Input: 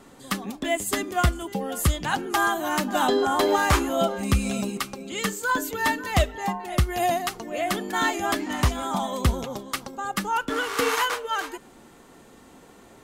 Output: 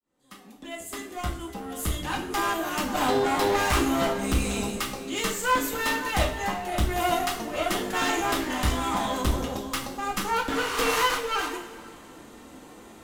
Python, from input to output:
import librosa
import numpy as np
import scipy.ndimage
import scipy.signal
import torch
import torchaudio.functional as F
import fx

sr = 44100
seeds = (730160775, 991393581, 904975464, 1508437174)

y = fx.fade_in_head(x, sr, length_s=3.76)
y = fx.clip_asym(y, sr, top_db=-34.5, bottom_db=-17.5)
y = fx.rev_double_slope(y, sr, seeds[0], early_s=0.43, late_s=2.5, knee_db=-17, drr_db=-0.5)